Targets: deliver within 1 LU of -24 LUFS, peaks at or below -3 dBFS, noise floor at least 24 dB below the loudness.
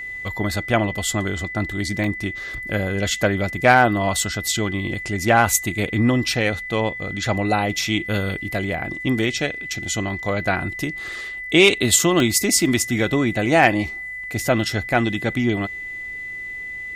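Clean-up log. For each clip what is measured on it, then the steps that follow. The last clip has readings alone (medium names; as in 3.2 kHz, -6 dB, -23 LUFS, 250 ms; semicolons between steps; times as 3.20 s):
dropouts 2; longest dropout 1.6 ms; steady tone 2 kHz; tone level -29 dBFS; loudness -20.5 LUFS; peak level -2.0 dBFS; loudness target -24.0 LUFS
-> interpolate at 2.04/12.20 s, 1.6 ms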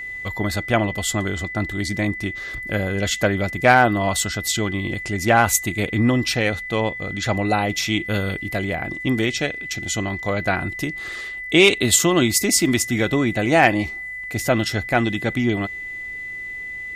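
dropouts 0; steady tone 2 kHz; tone level -29 dBFS
-> band-stop 2 kHz, Q 30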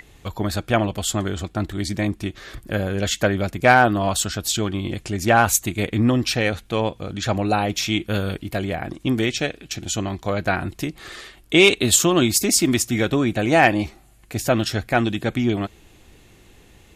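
steady tone not found; loudness -21.0 LUFS; peak level -2.5 dBFS; loudness target -24.0 LUFS
-> trim -3 dB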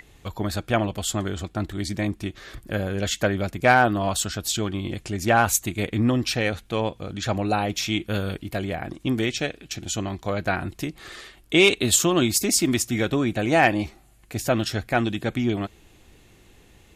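loudness -24.0 LUFS; peak level -5.5 dBFS; noise floor -54 dBFS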